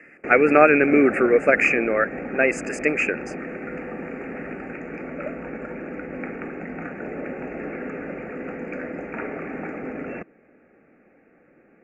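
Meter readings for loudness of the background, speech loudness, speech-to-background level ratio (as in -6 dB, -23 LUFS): -32.5 LUFS, -19.0 LUFS, 13.5 dB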